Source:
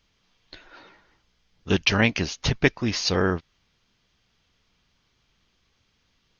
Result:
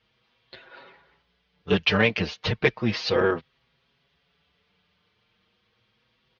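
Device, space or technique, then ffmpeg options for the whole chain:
barber-pole flanger into a guitar amplifier: -filter_complex "[0:a]asplit=2[link_01][link_02];[link_02]adelay=5.9,afreqshift=0.34[link_03];[link_01][link_03]amix=inputs=2:normalize=1,asoftclip=type=tanh:threshold=-15dB,highpass=83,equalizer=frequency=89:width_type=q:width=4:gain=-5,equalizer=frequency=290:width_type=q:width=4:gain=-8,equalizer=frequency=470:width_type=q:width=4:gain=5,lowpass=frequency=4100:width=0.5412,lowpass=frequency=4100:width=1.3066,volume=4.5dB"

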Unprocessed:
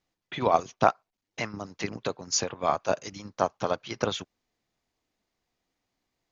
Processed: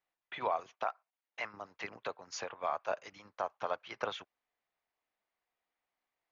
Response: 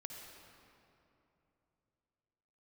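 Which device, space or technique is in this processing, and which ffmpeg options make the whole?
DJ mixer with the lows and highs turned down: -filter_complex "[0:a]acrossover=split=540 3100:gain=0.141 1 0.141[link_01][link_02][link_03];[link_01][link_02][link_03]amix=inputs=3:normalize=0,alimiter=limit=-17.5dB:level=0:latency=1:release=78,asettb=1/sr,asplit=3[link_04][link_05][link_06];[link_04]atrim=end=0.754[link_07];[link_05]atrim=start=0.75:end=1.45,asetpts=PTS-STARTPTS,afade=type=in:duration=0.004:curve=qsin,afade=type=out:start_time=0.696:duration=0.004:curve=qsin,highpass=frequency=420:poles=1[link_08];[link_06]atrim=start=1.446[link_09];[link_07][link_08]acrossfade=duration=0.004:curve1=hsin:curve2=qsin[link_10];[link_10][link_09]acrossfade=duration=0.004:curve1=qsin:curve2=hsin,volume=-3.5dB"

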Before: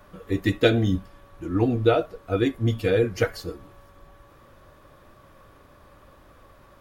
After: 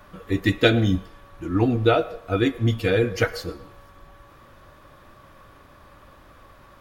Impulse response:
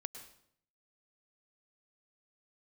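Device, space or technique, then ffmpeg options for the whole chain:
filtered reverb send: -filter_complex "[0:a]asplit=2[link_01][link_02];[link_02]highpass=frequency=440:width=0.5412,highpass=frequency=440:width=1.3066,lowpass=6500[link_03];[1:a]atrim=start_sample=2205[link_04];[link_03][link_04]afir=irnorm=-1:irlink=0,volume=-6.5dB[link_05];[link_01][link_05]amix=inputs=2:normalize=0,volume=2dB"

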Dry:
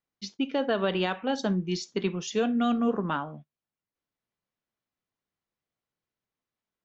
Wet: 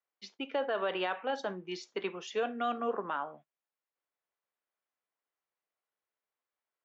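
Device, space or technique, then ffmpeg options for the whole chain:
DJ mixer with the lows and highs turned down: -filter_complex "[0:a]acrossover=split=400 2900:gain=0.0708 1 0.224[link_01][link_02][link_03];[link_01][link_02][link_03]amix=inputs=3:normalize=0,alimiter=limit=-23.5dB:level=0:latency=1:release=23"

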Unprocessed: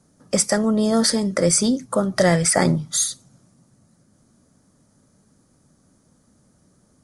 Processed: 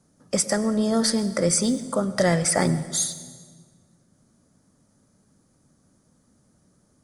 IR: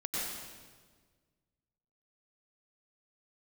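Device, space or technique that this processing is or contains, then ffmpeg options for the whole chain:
saturated reverb return: -filter_complex "[0:a]asplit=2[link_01][link_02];[1:a]atrim=start_sample=2205[link_03];[link_02][link_03]afir=irnorm=-1:irlink=0,asoftclip=type=tanh:threshold=-6.5dB,volume=-16dB[link_04];[link_01][link_04]amix=inputs=2:normalize=0,volume=-4.5dB"

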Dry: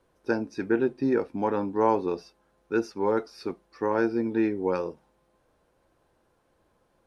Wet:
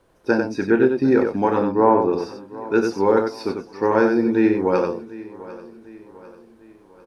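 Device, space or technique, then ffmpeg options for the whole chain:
slapback doubling: -filter_complex "[0:a]asettb=1/sr,asplit=3[link_01][link_02][link_03];[link_01]atrim=end=1.634[link_04];[link_02]atrim=start=1.63:end=2.13,asetpts=PTS-STARTPTS,afade=type=in:duration=0.004:curve=qsin,afade=type=out:start_time=0.496:duration=0.004:curve=qsin,lowpass=1500[link_05];[link_03]atrim=start=2.126[link_06];[link_04][link_05]acrossfade=duration=0.004:curve1=hsin:curve2=qsin[link_07];[link_07][link_06]acrossfade=duration=0.004:curve1=qsin:curve2=hsin,aecho=1:1:748|1496|2244|2992:0.119|0.0559|0.0263|0.0123,asplit=3[link_08][link_09][link_10];[link_09]adelay=31,volume=-9dB[link_11];[link_10]adelay=93,volume=-5.5dB[link_12];[link_08][link_11][link_12]amix=inputs=3:normalize=0,volume=7dB"

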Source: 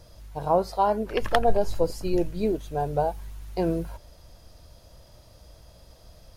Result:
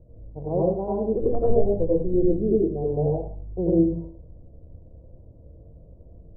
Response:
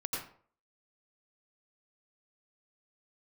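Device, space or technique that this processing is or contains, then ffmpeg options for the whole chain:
next room: -filter_complex "[0:a]lowpass=frequency=500:width=0.5412,lowpass=frequency=500:width=1.3066[link_01];[1:a]atrim=start_sample=2205[link_02];[link_01][link_02]afir=irnorm=-1:irlink=0,volume=2.5dB"

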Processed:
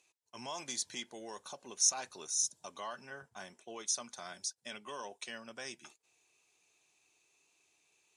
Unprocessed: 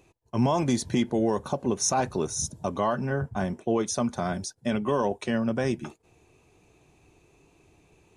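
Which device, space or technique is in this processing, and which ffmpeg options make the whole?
piezo pickup straight into a mixer: -af "lowpass=7100,aderivative,volume=2dB"

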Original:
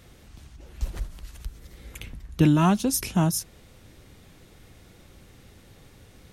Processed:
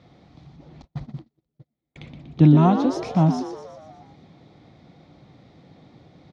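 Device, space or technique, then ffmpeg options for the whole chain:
frequency-shifting delay pedal into a guitar cabinet: -filter_complex "[0:a]asplit=8[link_01][link_02][link_03][link_04][link_05][link_06][link_07][link_08];[link_02]adelay=120,afreqshift=93,volume=-8.5dB[link_09];[link_03]adelay=240,afreqshift=186,volume=-13.5dB[link_10];[link_04]adelay=360,afreqshift=279,volume=-18.6dB[link_11];[link_05]adelay=480,afreqshift=372,volume=-23.6dB[link_12];[link_06]adelay=600,afreqshift=465,volume=-28.6dB[link_13];[link_07]adelay=720,afreqshift=558,volume=-33.7dB[link_14];[link_08]adelay=840,afreqshift=651,volume=-38.7dB[link_15];[link_01][link_09][link_10][link_11][link_12][link_13][link_14][link_15]amix=inputs=8:normalize=0,highpass=110,equalizer=frequency=150:width_type=q:width=4:gain=8,equalizer=frequency=290:width_type=q:width=4:gain=5,equalizer=frequency=410:width_type=q:width=4:gain=-3,equalizer=frequency=740:width_type=q:width=4:gain=7,equalizer=frequency=1600:width_type=q:width=4:gain=-8,equalizer=frequency=2800:width_type=q:width=4:gain=-10,lowpass=frequency=4300:width=0.5412,lowpass=frequency=4300:width=1.3066,asettb=1/sr,asplit=3[link_16][link_17][link_18];[link_16]atrim=end=0.824[link_19];[link_17]atrim=start=0.82:end=1.96,asetpts=PTS-STARTPTS,afade=type=in:duration=0.004:curve=qsin,afade=type=out:start_time=1.136:duration=0.004:curve=qsin,agate=range=-39dB:threshold=-33dB:ratio=16:detection=peak[link_20];[link_18]atrim=start=1.956[link_21];[link_19][link_20]acrossfade=duration=0.004:curve1=hsin:curve2=qsin[link_22];[link_22][link_21]acrossfade=duration=0.004:curve1=qsin:curve2=hsin"

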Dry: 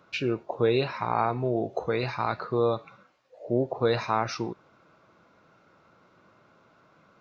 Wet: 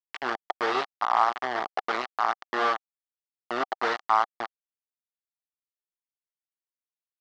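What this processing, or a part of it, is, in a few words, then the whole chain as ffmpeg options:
hand-held game console: -filter_complex "[0:a]asettb=1/sr,asplit=3[link_01][link_02][link_03];[link_01]atrim=end=1.664[link_04];[link_02]atrim=start=1.66:end=3.85,asetpts=PTS-STARTPTS,afade=type=in:duration=0.004:curve=qsin,afade=type=out:start_time=2.186:duration=0.004:curve=qsin,lowshelf=frequency=120:width_type=q:width=1.5:gain=-12[link_05];[link_03]atrim=start=3.846[link_06];[link_04][link_05]acrossfade=duration=0.004:curve1=hsin:curve2=qsin[link_07];[link_07][link_06]acrossfade=duration=0.004:curve1=qsin:curve2=hsin,acrusher=bits=3:mix=0:aa=0.000001,highpass=460,equalizer=frequency=510:width_type=q:width=4:gain=-9,equalizer=frequency=770:width_type=q:width=4:gain=8,equalizer=frequency=1200:width_type=q:width=4:gain=8,equalizer=frequency=1800:width_type=q:width=4:gain=4,equalizer=frequency=2500:width_type=q:width=4:gain=-7,equalizer=frequency=3800:width_type=q:width=4:gain=-5,lowpass=frequency=4300:width=0.5412,lowpass=frequency=4300:width=1.3066,volume=-1dB"

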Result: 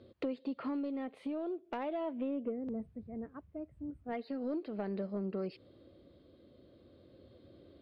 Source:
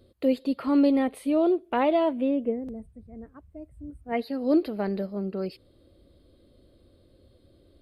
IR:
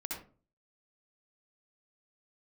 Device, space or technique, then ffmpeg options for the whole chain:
AM radio: -af "highpass=110,lowpass=3400,acompressor=threshold=-35dB:ratio=8,asoftclip=type=tanh:threshold=-28dB,tremolo=f=0.39:d=0.28,volume=2.5dB"

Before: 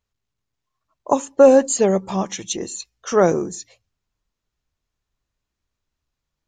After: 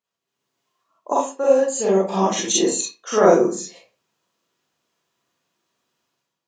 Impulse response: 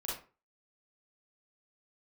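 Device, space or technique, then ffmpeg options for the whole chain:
far laptop microphone: -filter_complex "[1:a]atrim=start_sample=2205[link_01];[0:a][link_01]afir=irnorm=-1:irlink=0,highpass=frequency=170:width=0.5412,highpass=frequency=170:width=1.3066,dynaudnorm=framelen=100:gausssize=7:maxgain=11dB,asettb=1/sr,asplit=3[link_02][link_03][link_04];[link_02]atrim=end=1.124[link_05];[link_03]atrim=start=1.12:end=1.78,asetpts=PTS-STARTPTS,afade=type=in:duration=0.004:curve=qsin,afade=type=out:start_time=0.656:duration=0.004:curve=qsin,lowshelf=frequency=390:gain=-7.5[link_06];[link_04]atrim=start=1.776[link_07];[link_05][link_06]acrossfade=duration=0.004:curve1=hsin:curve2=qsin[link_08];[link_08][link_07]acrossfade=duration=0.004:curve1=qsin:curve2=hsin,volume=-1dB"

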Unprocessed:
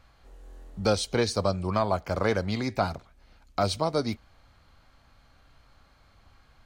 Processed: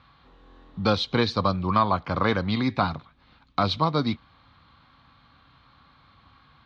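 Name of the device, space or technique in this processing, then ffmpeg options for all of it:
guitar cabinet: -af "highpass=79,equalizer=frequency=150:width_type=q:width=4:gain=6,equalizer=frequency=260:width_type=q:width=4:gain=4,equalizer=frequency=410:width_type=q:width=4:gain=-5,equalizer=frequency=630:width_type=q:width=4:gain=-7,equalizer=frequency=1100:width_type=q:width=4:gain=8,equalizer=frequency=3700:width_type=q:width=4:gain=8,lowpass=frequency=4100:width=0.5412,lowpass=frequency=4100:width=1.3066,volume=3dB"

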